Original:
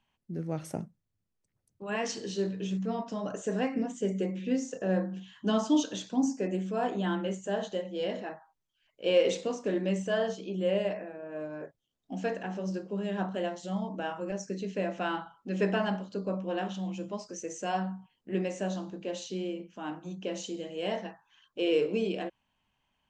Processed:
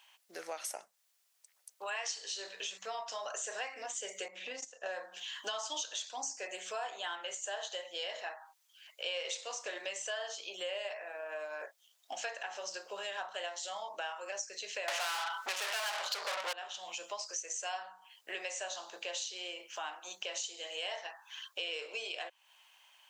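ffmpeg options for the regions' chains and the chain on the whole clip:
-filter_complex "[0:a]asettb=1/sr,asplit=3[a][b][c];[a]atrim=end=4.284[d];[b]atrim=start=4.28:end=4.86,asetpts=PTS-STARTPTS,afade=t=in:d=0.004:c=qsin,afade=t=out:st=0.576:d=0.004:c=qsin,bass=f=250:g=12,treble=f=4k:g=-6,acompressor=threshold=-28dB:ratio=5:attack=3.2:release=140:knee=1:detection=peak,agate=range=-20dB:threshold=-32dB:ratio=16:release=100:detection=peak[e];[c]atrim=start=4.856[f];[d][e]acrossfade=d=0.004:c1=hsin:c2=qsin[g];[g][f]acrossfade=d=0.004:c1=qsin:c2=hsin,asettb=1/sr,asplit=3[h][i][j];[h]atrim=end=14.884[k];[i]atrim=start=14.88:end=16.53,asetpts=PTS-STARTPTS,afade=t=in:d=0.004:c=qsin,afade=t=out:st=1.646:d=0.004:c=qsin,bandreject=f=252.5:t=h:w=4,bandreject=f=505:t=h:w=4,bandreject=f=757.5:t=h:w=4,bandreject=f=1.01k:t=h:w=4,bandreject=f=1.2625k:t=h:w=4,bandreject=f=1.515k:t=h:w=4,bandreject=f=1.7675k:t=h:w=4,bandreject=f=2.02k:t=h:w=4,asplit=2[l][m];[m]highpass=f=720:p=1,volume=40dB,asoftclip=type=tanh:threshold=-15dB[n];[l][n]amix=inputs=2:normalize=0,lowpass=f=5k:p=1,volume=-6dB[o];[j]atrim=start=16.526[p];[k][o]acrossfade=d=0.004:c1=hsin:c2=qsin[q];[q][p]acrossfade=d=0.004:c1=qsin:c2=hsin,highpass=f=640:w=0.5412,highpass=f=640:w=1.3066,highshelf=f=2k:g=12,acompressor=threshold=-49dB:ratio=4,volume=9dB"

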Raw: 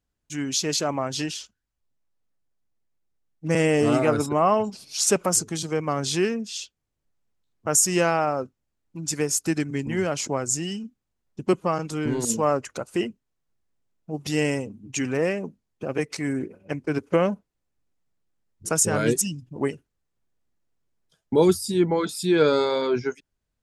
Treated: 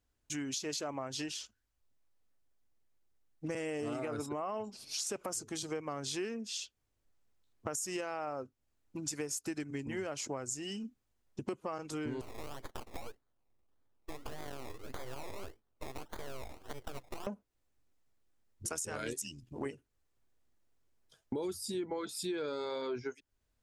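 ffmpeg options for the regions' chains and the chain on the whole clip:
-filter_complex "[0:a]asettb=1/sr,asplit=3[a][b][c];[a]atrim=end=12.214[d];[b]atrim=start=12.21:end=17.27,asetpts=PTS-STARTPTS,afade=t=in:d=0.004:c=qsin,afade=t=out:st=5.056:d=0.004:c=qsin,acompressor=threshold=-33dB:ratio=12:attack=3.2:release=140:knee=1:detection=peak,acrusher=samples=23:mix=1:aa=0.000001:lfo=1:lforange=13.8:lforate=1.7,aeval=exprs='abs(val(0))':c=same[e];[c]atrim=start=17.266[f];[d][e]acrossfade=d=0.004:c1=hsin:c2=qsin[g];[g][f]acrossfade=d=0.004:c1=qsin:c2=hsin,asettb=1/sr,asplit=3[h][i][j];[h]atrim=end=18.674[k];[i]atrim=start=18.67:end=19.66,asetpts=PTS-STARTPTS,afade=t=in:d=0.004:c=qsin,afade=t=out:st=0.986:d=0.004:c=qsin,tiltshelf=f=1.3k:g=-4,tremolo=f=81:d=0.571[l];[j]atrim=start=19.656[m];[k][l]acrossfade=d=0.004:c1=hsin:c2=qsin[n];[n][m]acrossfade=d=0.004:c1=qsin:c2=hsin,equalizer=f=170:w=5.1:g=-13.5,alimiter=limit=-14dB:level=0:latency=1:release=47,acompressor=threshold=-39dB:ratio=4,volume=1dB"

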